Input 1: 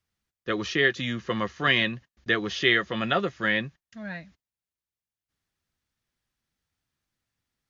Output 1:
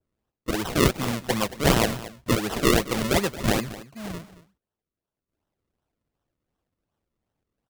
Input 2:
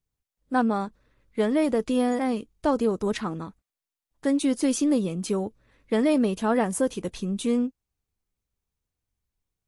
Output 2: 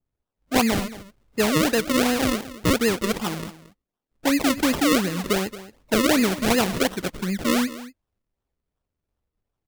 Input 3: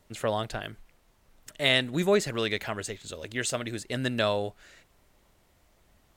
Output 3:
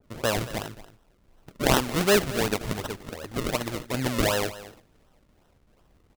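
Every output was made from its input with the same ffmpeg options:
-af "acrusher=samples=38:mix=1:aa=0.000001:lfo=1:lforange=38:lforate=2.7,aecho=1:1:225:0.158,adynamicequalizer=threshold=0.0126:dfrequency=1600:dqfactor=0.7:tfrequency=1600:tqfactor=0.7:attack=5:release=100:ratio=0.375:range=2:mode=boostabove:tftype=highshelf,volume=1.26"

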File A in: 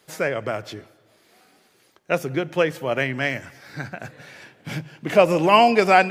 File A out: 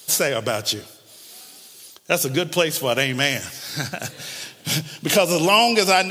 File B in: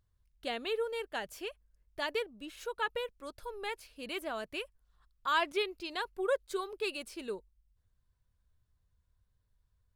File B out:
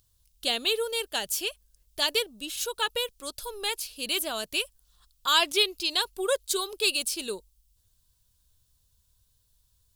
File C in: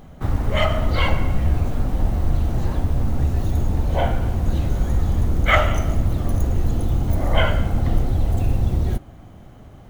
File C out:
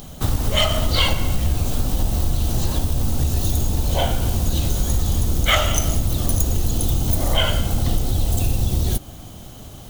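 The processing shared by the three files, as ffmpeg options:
-af "acompressor=threshold=0.0891:ratio=2.5,aexciter=amount=5.7:drive=4.1:freq=2900,volume=1.58"

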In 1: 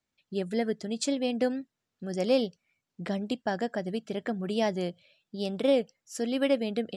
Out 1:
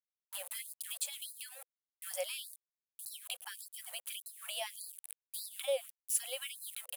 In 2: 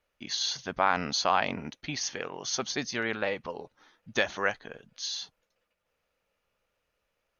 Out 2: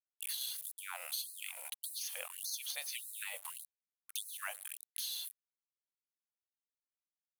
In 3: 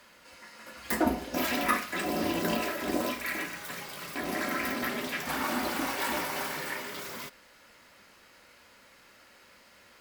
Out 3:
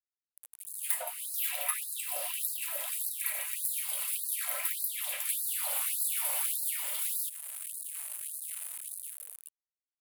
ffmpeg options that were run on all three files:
-filter_complex "[0:a]aecho=1:1:106:0.0668,acrossover=split=5100[s0][s1];[s0]aexciter=amount=2.2:drive=9.9:freq=2300[s2];[s2][s1]amix=inputs=2:normalize=0,dynaudnorm=f=330:g=7:m=3.76,aeval=exprs='val(0)*gte(abs(val(0)),0.0211)':c=same,adynamicequalizer=threshold=0.0251:dfrequency=2200:dqfactor=0.92:tfrequency=2200:tqfactor=0.92:attack=5:release=100:ratio=0.375:range=3:mode=cutabove:tftype=bell,acrossover=split=360[s3][s4];[s4]acompressor=threshold=0.0158:ratio=2.5[s5];[s3][s5]amix=inputs=2:normalize=0,highshelf=f=7500:t=q:w=3:g=13,afftfilt=real='re*gte(b*sr/1024,480*pow(4000/480,0.5+0.5*sin(2*PI*1.7*pts/sr)))':imag='im*gte(b*sr/1024,480*pow(4000/480,0.5+0.5*sin(2*PI*1.7*pts/sr)))':win_size=1024:overlap=0.75,volume=0.501"

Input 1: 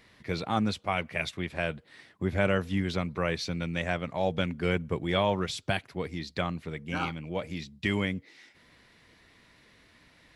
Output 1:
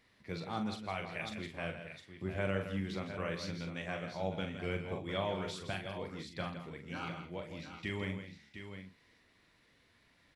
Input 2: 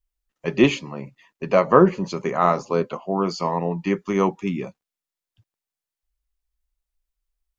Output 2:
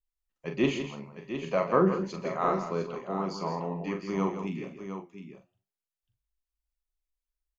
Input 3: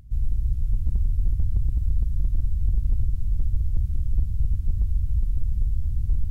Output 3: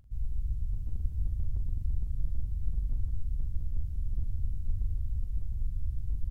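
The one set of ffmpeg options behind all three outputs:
-filter_complex "[0:a]flanger=delay=3.6:depth=8.9:regen=86:speed=0.33:shape=triangular,asplit=2[s0][s1];[s1]adelay=42,volume=0.447[s2];[s0][s2]amix=inputs=2:normalize=0,aecho=1:1:123|163|707:0.112|0.335|0.335,volume=0.501"

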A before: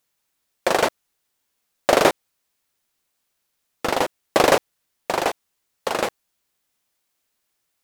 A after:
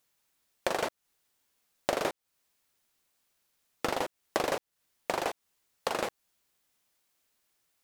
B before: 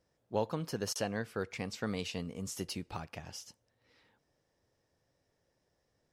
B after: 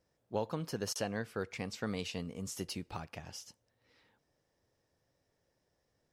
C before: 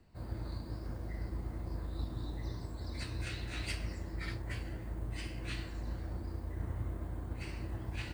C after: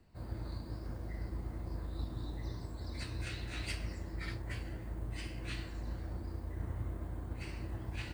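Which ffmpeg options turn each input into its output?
-af "acompressor=threshold=0.0447:ratio=5,volume=0.891"

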